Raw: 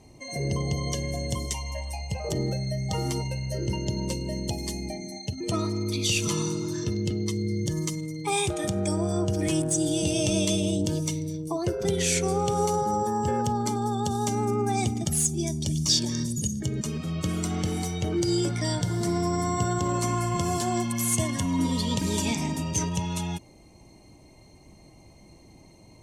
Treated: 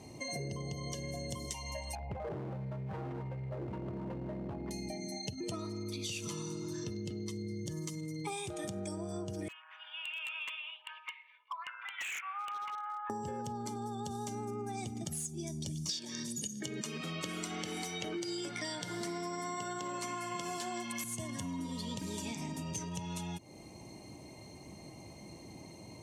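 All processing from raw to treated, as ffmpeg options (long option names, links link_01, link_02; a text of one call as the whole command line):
ffmpeg -i in.wav -filter_complex "[0:a]asettb=1/sr,asplit=3[link_01][link_02][link_03];[link_01]atrim=end=1.954[link_04];[link_02]atrim=start=1.95:end=4.71,asetpts=PTS-STARTPTS,afade=type=in:duration=0.004:curve=qsin,afade=type=out:start_time=2.756:duration=0.004:curve=qsin,lowpass=frequency=1700:width=0.5412,lowpass=frequency=1700:width=1.3066,asoftclip=type=hard:threshold=-29dB[link_05];[link_03]atrim=start=4.706[link_06];[link_04][link_05]acrossfade=duration=0.004:curve1=hsin:curve2=qsin[link_07];[link_07][link_06]acrossfade=duration=0.004:curve1=qsin:curve2=hsin,asettb=1/sr,asplit=3[link_08][link_09][link_10];[link_08]atrim=end=9.484[link_11];[link_09]atrim=start=9.48:end=13.1,asetpts=PTS-STARTPTS,afade=type=in:duration=0.004:curve=qsin,afade=type=out:start_time=3.616:duration=0.004:curve=qsin,asuperpass=centerf=1700:order=12:qfactor=0.9,aeval=exprs='0.0211*(abs(mod(val(0)/0.0211+3,4)-2)-1)':channel_layout=same[link_12];[link_10]atrim=start=13.096[link_13];[link_11][link_12]acrossfade=duration=0.004:curve1=hsin:curve2=qsin[link_14];[link_14][link_13]acrossfade=duration=0.004:curve1=qsin:curve2=hsin,asettb=1/sr,asplit=3[link_15][link_16][link_17];[link_15]atrim=end=15.894[link_18];[link_16]atrim=start=15.89:end=21.04,asetpts=PTS-STARTPTS,afade=type=in:duration=0.004:curve=qsin,afade=type=out:start_time=5.146:duration=0.004:curve=qsin,highpass=220,acontrast=42,equalizer=frequency=2400:width_type=o:width=2.1:gain=8.5[link_19];[link_17]atrim=start=21.036[link_20];[link_18][link_19]acrossfade=duration=0.004:curve1=hsin:curve2=qsin[link_21];[link_21][link_20]acrossfade=duration=0.004:curve1=qsin:curve2=hsin,highpass=99,acompressor=threshold=-40dB:ratio=10,volume=3dB" out.wav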